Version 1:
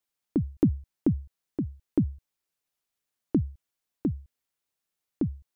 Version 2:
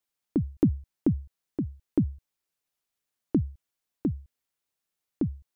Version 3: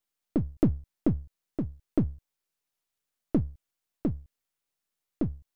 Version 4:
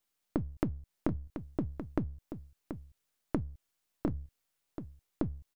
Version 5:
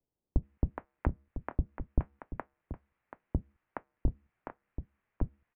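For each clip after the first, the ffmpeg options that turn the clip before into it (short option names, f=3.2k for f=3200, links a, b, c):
-af anull
-af "aeval=exprs='if(lt(val(0),0),0.447*val(0),val(0))':c=same,volume=1.5dB"
-af "acompressor=threshold=-32dB:ratio=10,aecho=1:1:732:0.335,volume=3.5dB"
-filter_complex "[0:a]acrossover=split=870[a][b];[b]adelay=420[c];[a][c]amix=inputs=2:normalize=0,highpass=f=300:t=q:w=0.5412,highpass=f=300:t=q:w=1.307,lowpass=f=2.6k:t=q:w=0.5176,lowpass=f=2.6k:t=q:w=0.7071,lowpass=f=2.6k:t=q:w=1.932,afreqshift=-350,volume=8.5dB"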